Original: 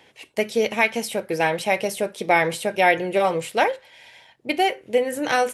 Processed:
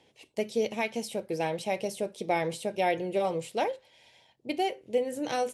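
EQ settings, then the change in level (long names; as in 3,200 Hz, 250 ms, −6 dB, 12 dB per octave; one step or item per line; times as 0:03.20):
Bessel low-pass filter 8,400 Hz, order 2
parametric band 1,600 Hz −11.5 dB 1.5 octaves
−5.5 dB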